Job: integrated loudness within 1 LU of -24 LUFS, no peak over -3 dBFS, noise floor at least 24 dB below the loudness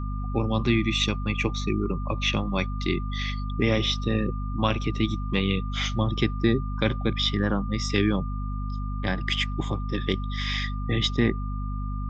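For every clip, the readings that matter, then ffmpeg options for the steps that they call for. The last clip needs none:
hum 50 Hz; highest harmonic 250 Hz; hum level -27 dBFS; steady tone 1.2 kHz; tone level -40 dBFS; loudness -26.5 LUFS; peak level -8.0 dBFS; loudness target -24.0 LUFS
-> -af "bandreject=f=50:t=h:w=6,bandreject=f=100:t=h:w=6,bandreject=f=150:t=h:w=6,bandreject=f=200:t=h:w=6,bandreject=f=250:t=h:w=6"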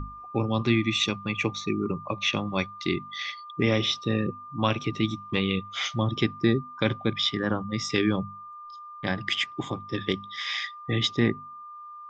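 hum not found; steady tone 1.2 kHz; tone level -40 dBFS
-> -af "bandreject=f=1200:w=30"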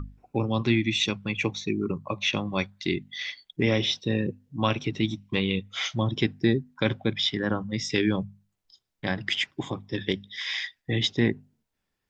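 steady tone not found; loudness -27.5 LUFS; peak level -9.0 dBFS; loudness target -24.0 LUFS
-> -af "volume=1.5"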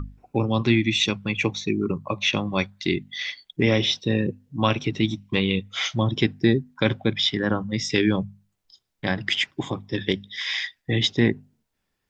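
loudness -24.0 LUFS; peak level -5.5 dBFS; noise floor -77 dBFS

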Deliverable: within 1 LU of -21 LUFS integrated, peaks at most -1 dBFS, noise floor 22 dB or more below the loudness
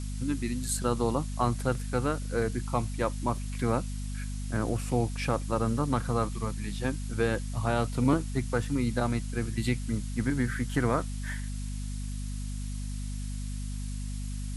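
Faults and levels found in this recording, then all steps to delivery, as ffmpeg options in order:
hum 50 Hz; highest harmonic 250 Hz; hum level -32 dBFS; noise floor -35 dBFS; noise floor target -53 dBFS; loudness -31.0 LUFS; peak level -12.0 dBFS; loudness target -21.0 LUFS
-> -af "bandreject=f=50:t=h:w=6,bandreject=f=100:t=h:w=6,bandreject=f=150:t=h:w=6,bandreject=f=200:t=h:w=6,bandreject=f=250:t=h:w=6"
-af "afftdn=nr=18:nf=-35"
-af "volume=3.16"

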